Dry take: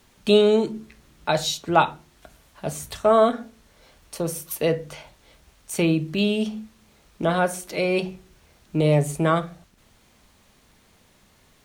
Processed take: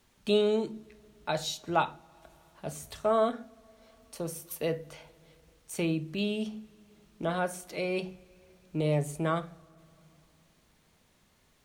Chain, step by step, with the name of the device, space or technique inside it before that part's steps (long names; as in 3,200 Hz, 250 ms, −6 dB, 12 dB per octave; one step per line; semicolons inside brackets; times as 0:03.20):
compressed reverb return (on a send at −14 dB: convolution reverb RT60 1.9 s, pre-delay 19 ms + downward compressor 4 to 1, threshold −33 dBFS, peak gain reduction 17.5 dB)
on the sum: level −9 dB